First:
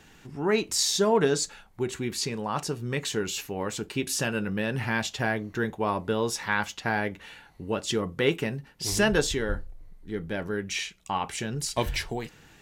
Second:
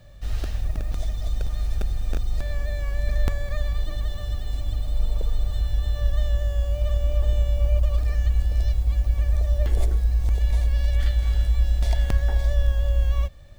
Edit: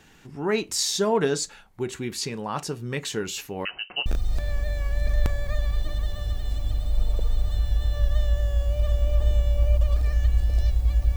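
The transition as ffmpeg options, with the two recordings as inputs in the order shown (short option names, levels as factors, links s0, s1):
-filter_complex "[0:a]asettb=1/sr,asplit=3[s0][s1][s2];[s0]atrim=end=3.654[s3];[s1]atrim=start=3.65:end=4.06,asetpts=PTS-STARTPTS,afade=t=in:d=0.004:c=qsin,afade=t=out:st=0.406:d=0.004:c=qsin,lowpass=f=2600:t=q:w=0.5098,lowpass=f=2600:t=q:w=0.6013,lowpass=f=2600:t=q:w=0.9,lowpass=f=2600:t=q:w=2.563,afreqshift=-3100[s4];[s2]atrim=start=4.056[s5];[s3][s4]acrossfade=d=0.004:c1=hsin:c2=qsin[s6];[s6][s5]acrossfade=d=0.004:c1=qsin:c2=hsin,apad=whole_dur=11.16,atrim=end=11.16,atrim=end=4.062[s7];[1:a]atrim=start=2.078:end=9.18[s8];[s7][s8]acrossfade=d=0.004:c1=hsin:c2=hsin"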